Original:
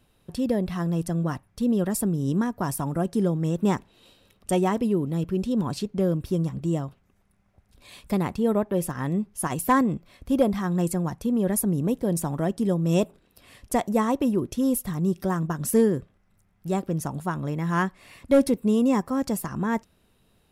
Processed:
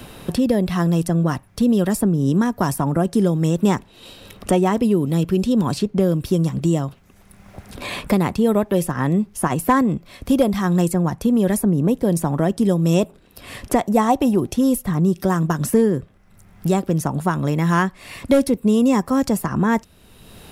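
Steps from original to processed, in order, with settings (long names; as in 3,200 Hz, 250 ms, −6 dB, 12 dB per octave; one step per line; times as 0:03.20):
0:13.97–0:14.56: parametric band 770 Hz +14.5 dB 0.24 octaves
multiband upward and downward compressor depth 70%
level +6 dB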